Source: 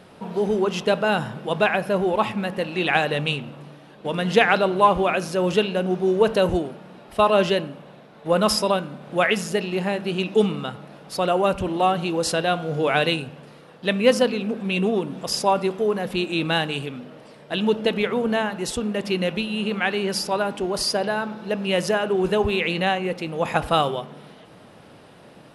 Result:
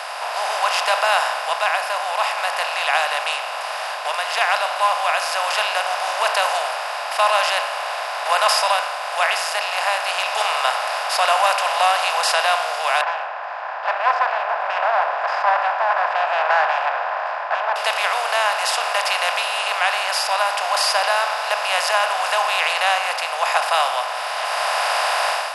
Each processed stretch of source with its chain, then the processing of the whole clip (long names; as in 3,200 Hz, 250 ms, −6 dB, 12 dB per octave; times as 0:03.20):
0:13.01–0:17.76: lower of the sound and its delayed copy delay 1.2 ms + elliptic band-pass filter 320–1,600 Hz, stop band 80 dB + high-frequency loss of the air 130 metres
whole clip: compressor on every frequency bin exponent 0.4; Butterworth high-pass 650 Hz 48 dB per octave; automatic gain control; level −4 dB